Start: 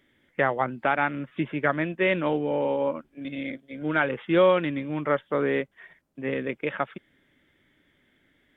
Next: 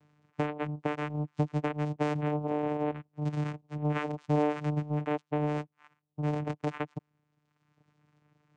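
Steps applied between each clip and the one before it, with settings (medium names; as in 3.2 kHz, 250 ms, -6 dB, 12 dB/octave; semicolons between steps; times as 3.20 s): reverb removal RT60 1.4 s; compression 2.5:1, threshold -29 dBFS, peak gain reduction 9 dB; vocoder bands 4, saw 149 Hz; trim +2 dB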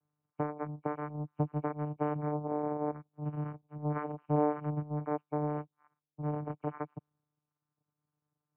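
knee-point frequency compression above 2.2 kHz 4:1; resonant high shelf 1.7 kHz -11 dB, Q 1.5; three bands expanded up and down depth 40%; trim -4 dB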